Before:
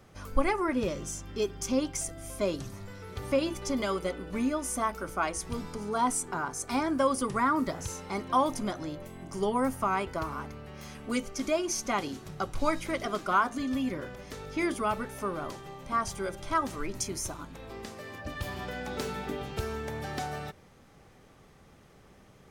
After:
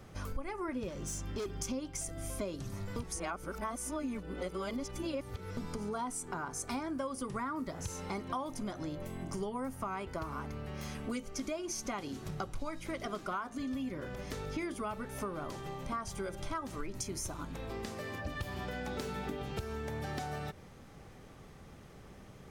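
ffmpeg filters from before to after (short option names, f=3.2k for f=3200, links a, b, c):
-filter_complex "[0:a]asettb=1/sr,asplit=3[a][b][c];[a]atrim=end=0.894[d];[b]atrim=start=0.89:end=1.46,asetpts=PTS-STARTPTS,afade=t=in:d=0.004:c=qsin,afade=t=out:st=0.566:d=0.004:c=qsin,asoftclip=type=hard:threshold=-32.5dB[e];[c]atrim=start=1.456[f];[d][e]acrossfade=d=0.004:c1=hsin:c2=qsin[g];[g][f]acrossfade=d=0.004:c1=qsin:c2=hsin,asplit=3[h][i][j];[h]atrim=end=2.962[k];[i]atrim=start=2.958:end=5.572,asetpts=PTS-STARTPTS,areverse[l];[j]atrim=start=5.568[m];[k][l]acrossfade=d=0.004:c1=hsin:c2=hsin[n];[n][m]acrossfade=d=0.004:c1=hsin:c2=hsin,lowshelf=f=260:g=4,acompressor=threshold=-37dB:ratio=6,volume=1.5dB"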